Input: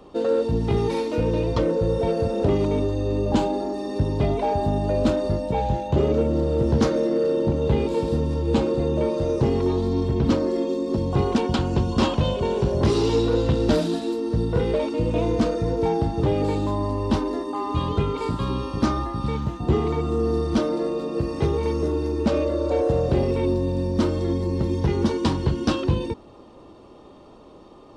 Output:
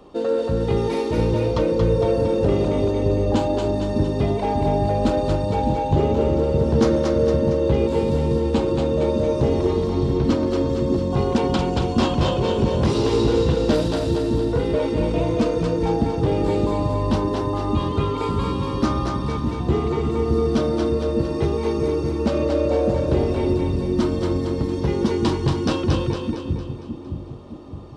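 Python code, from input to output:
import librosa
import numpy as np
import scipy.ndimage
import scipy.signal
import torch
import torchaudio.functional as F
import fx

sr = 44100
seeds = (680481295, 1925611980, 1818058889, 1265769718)

y = fx.echo_split(x, sr, split_hz=330.0, low_ms=614, high_ms=229, feedback_pct=52, wet_db=-3.5)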